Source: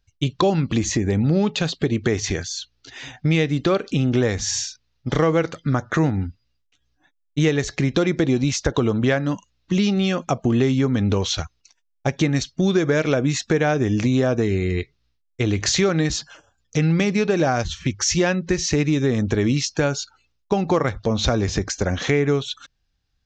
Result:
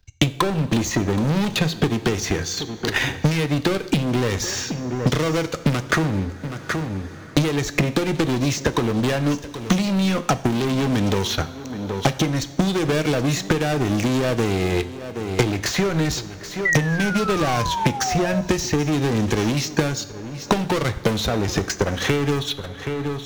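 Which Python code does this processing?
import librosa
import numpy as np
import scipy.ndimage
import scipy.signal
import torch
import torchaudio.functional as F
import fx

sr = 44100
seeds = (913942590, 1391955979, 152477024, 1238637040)

p1 = fx.leveller(x, sr, passes=5)
p2 = fx.transient(p1, sr, attack_db=10, sustain_db=-11)
p3 = fx.spec_paint(p2, sr, seeds[0], shape='fall', start_s=16.65, length_s=1.76, low_hz=600.0, high_hz=2000.0, level_db=-16.0)
p4 = p3 + fx.echo_single(p3, sr, ms=774, db=-22.5, dry=0)
p5 = fx.rev_double_slope(p4, sr, seeds[1], early_s=0.53, late_s=2.8, knee_db=-20, drr_db=11.5)
p6 = fx.band_squash(p5, sr, depth_pct=100)
y = p6 * 10.0 ** (-14.0 / 20.0)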